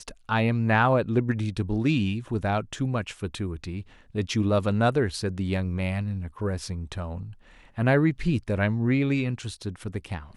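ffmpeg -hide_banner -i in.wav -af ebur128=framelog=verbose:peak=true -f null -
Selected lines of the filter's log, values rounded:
Integrated loudness:
  I:         -26.5 LUFS
  Threshold: -36.8 LUFS
Loudness range:
  LRA:         3.1 LU
  Threshold: -47.3 LUFS
  LRA low:   -28.7 LUFS
  LRA high:  -25.6 LUFS
True peak:
  Peak:       -8.2 dBFS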